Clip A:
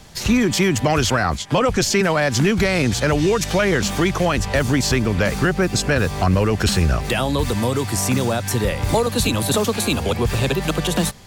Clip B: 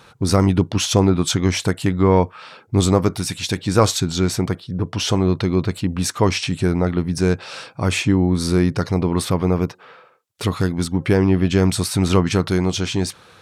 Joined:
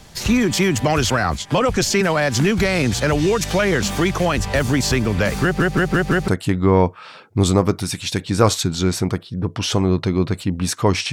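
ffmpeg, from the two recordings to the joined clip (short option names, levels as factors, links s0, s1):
-filter_complex "[0:a]apad=whole_dur=11.12,atrim=end=11.12,asplit=5[s0][s1][s2][s3][s4];[s0]atrim=end=5.602[s5];[s1]atrim=start=5.428:end=5.602[s6];[s2]atrim=start=5.428:end=5.602[s7];[s3]atrim=start=5.428:end=5.602[s8];[s4]atrim=start=5.428:end=5.602[s9];[1:a]atrim=start=1.648:end=6.49[s10];[s5][s6]acrossfade=d=0.004:c1=hsin:c2=hsin[s11];[s11][s7]acrossfade=d=0.004:c1=hsin:c2=hsin[s12];[s12][s8]acrossfade=d=0.004:c1=hsin:c2=hsin[s13];[s13][s9]acrossfade=d=0.004:c1=hsin:c2=hsin[s14];[s14][s10]acrossfade=d=0.004:c1=hsin:c2=hsin"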